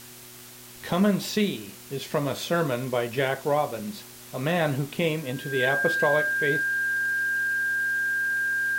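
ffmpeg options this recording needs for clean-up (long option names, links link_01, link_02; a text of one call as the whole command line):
ffmpeg -i in.wav -af "adeclick=threshold=4,bandreject=frequency=121.8:width_type=h:width=4,bandreject=frequency=243.6:width_type=h:width=4,bandreject=frequency=365.4:width_type=h:width=4,bandreject=frequency=1600:width=30,afftdn=noise_reduction=26:noise_floor=-45" out.wav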